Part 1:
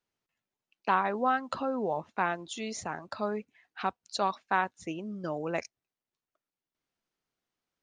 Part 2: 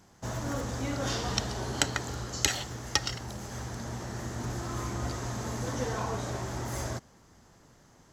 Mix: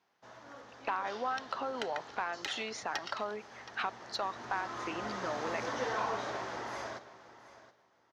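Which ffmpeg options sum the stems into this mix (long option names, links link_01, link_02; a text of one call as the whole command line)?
ffmpeg -i stem1.wav -i stem2.wav -filter_complex "[0:a]acompressor=threshold=-38dB:ratio=6,volume=3dB[link_01];[1:a]lowpass=7000,dynaudnorm=framelen=260:gausssize=13:maxgain=16.5dB,volume=-17dB,asplit=2[link_02][link_03];[link_03]volume=-16dB,aecho=0:1:722|1444|2166:1|0.16|0.0256[link_04];[link_01][link_02][link_04]amix=inputs=3:normalize=0,highpass=frequency=370:poles=1,equalizer=frequency=7800:width=2.1:gain=-11.5,asplit=2[link_05][link_06];[link_06]highpass=frequency=720:poles=1,volume=11dB,asoftclip=type=tanh:threshold=-19dB[link_07];[link_05][link_07]amix=inputs=2:normalize=0,lowpass=frequency=3200:poles=1,volume=-6dB" out.wav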